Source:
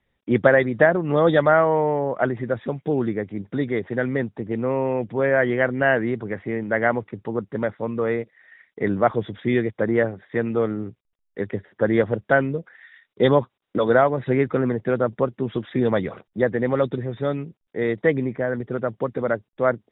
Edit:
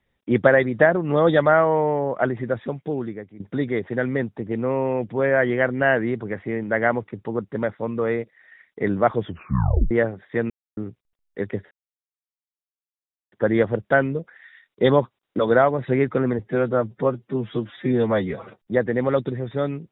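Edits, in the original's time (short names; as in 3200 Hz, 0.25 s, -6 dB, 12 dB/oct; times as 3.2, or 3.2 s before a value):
2.56–3.4 fade out, to -15.5 dB
9.24 tape stop 0.67 s
10.5–10.77 mute
11.71 insert silence 1.61 s
14.78–16.24 stretch 1.5×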